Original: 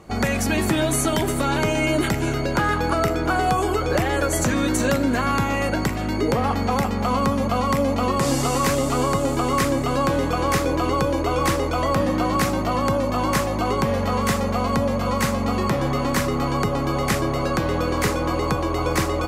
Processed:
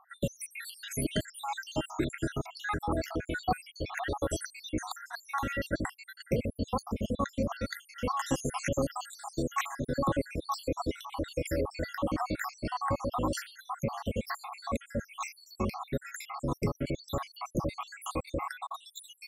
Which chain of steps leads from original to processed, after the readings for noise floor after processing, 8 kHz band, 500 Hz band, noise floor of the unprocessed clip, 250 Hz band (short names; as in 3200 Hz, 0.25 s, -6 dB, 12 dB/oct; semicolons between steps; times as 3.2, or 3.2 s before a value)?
-61 dBFS, -13.0 dB, -13.0 dB, -24 dBFS, -13.0 dB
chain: random spectral dropouts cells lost 79%; gain -6 dB